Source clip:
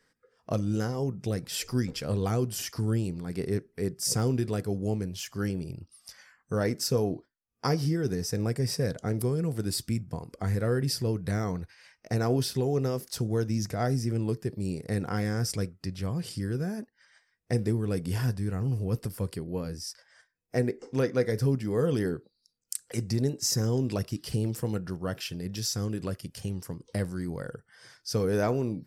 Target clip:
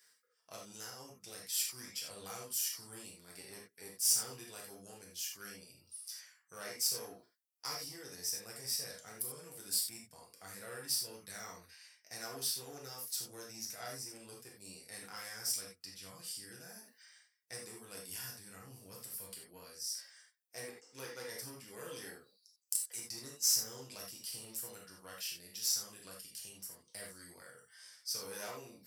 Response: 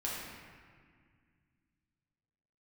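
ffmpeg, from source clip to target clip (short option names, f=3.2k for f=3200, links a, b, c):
-filter_complex "[0:a]areverse,acompressor=mode=upward:threshold=-37dB:ratio=2.5,areverse,lowshelf=f=260:g=3.5,aeval=exprs='0.237*(cos(1*acos(clip(val(0)/0.237,-1,1)))-cos(1*PI/2))+0.015*(cos(6*acos(clip(val(0)/0.237,-1,1)))-cos(6*PI/2))':c=same,aderivative[a];[1:a]atrim=start_sample=2205,atrim=end_sample=4410[b];[a][b]afir=irnorm=-1:irlink=0"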